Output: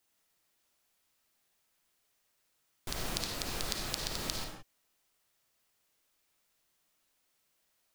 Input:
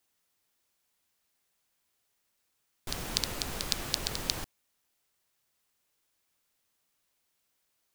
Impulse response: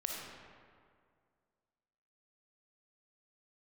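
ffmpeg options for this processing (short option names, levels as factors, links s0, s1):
-filter_complex "[0:a]acompressor=threshold=0.0224:ratio=3[s0];[1:a]atrim=start_sample=2205,afade=t=out:st=0.23:d=0.01,atrim=end_sample=10584[s1];[s0][s1]afir=irnorm=-1:irlink=0,volume=1.12"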